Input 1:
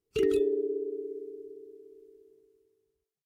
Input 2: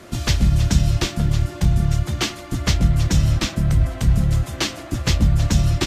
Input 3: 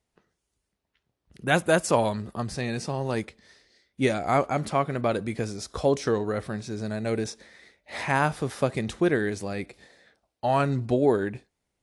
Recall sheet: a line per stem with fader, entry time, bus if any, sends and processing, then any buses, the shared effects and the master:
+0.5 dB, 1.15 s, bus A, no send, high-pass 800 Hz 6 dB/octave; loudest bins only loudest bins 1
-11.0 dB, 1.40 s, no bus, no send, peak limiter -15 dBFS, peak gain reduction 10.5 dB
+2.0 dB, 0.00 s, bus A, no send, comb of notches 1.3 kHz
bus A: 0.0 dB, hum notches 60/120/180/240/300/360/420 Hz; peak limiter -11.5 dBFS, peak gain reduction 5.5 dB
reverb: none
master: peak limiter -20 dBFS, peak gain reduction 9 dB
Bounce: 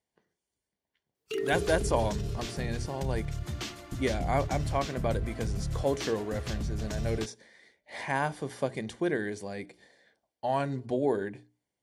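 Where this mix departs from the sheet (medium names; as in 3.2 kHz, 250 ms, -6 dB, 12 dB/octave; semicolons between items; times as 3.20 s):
stem 1: missing loudest bins only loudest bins 1; stem 3 +2.0 dB -> -5.0 dB; master: missing peak limiter -20 dBFS, peak gain reduction 9 dB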